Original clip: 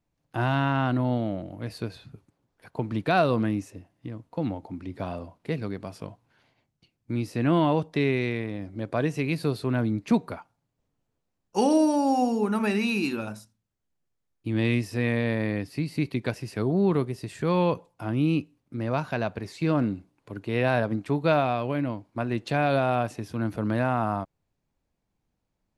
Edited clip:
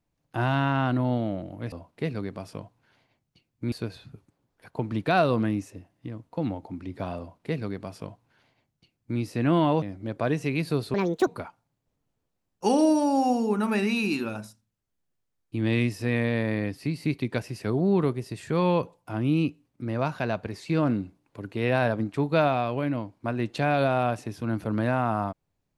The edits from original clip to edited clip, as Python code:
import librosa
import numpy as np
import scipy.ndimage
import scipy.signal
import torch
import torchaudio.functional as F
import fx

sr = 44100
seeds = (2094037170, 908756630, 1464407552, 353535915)

y = fx.edit(x, sr, fx.duplicate(start_s=5.19, length_s=2.0, to_s=1.72),
    fx.cut(start_s=7.82, length_s=0.73),
    fx.speed_span(start_s=9.67, length_s=0.52, speed=1.58), tone=tone)